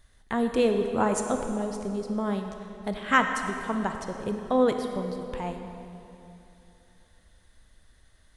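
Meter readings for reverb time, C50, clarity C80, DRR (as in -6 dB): 2.9 s, 5.5 dB, 6.5 dB, 5.0 dB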